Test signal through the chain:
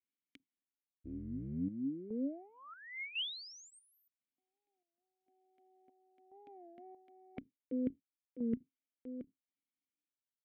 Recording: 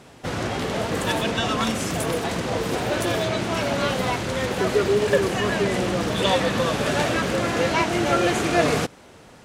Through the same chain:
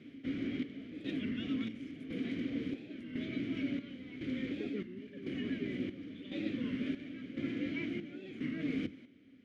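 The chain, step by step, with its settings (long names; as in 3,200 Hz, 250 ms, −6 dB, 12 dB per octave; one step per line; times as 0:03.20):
sub-octave generator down 1 octave, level +1 dB
reversed playback
downward compressor 6 to 1, threshold −28 dBFS
reversed playback
formant filter i
notch filter 7,700 Hz, Q 9.3
square-wave tremolo 0.95 Hz, depth 65%, duty 60%
high-shelf EQ 2,500 Hz −10 dB
wow of a warped record 33 1/3 rpm, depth 160 cents
level +7.5 dB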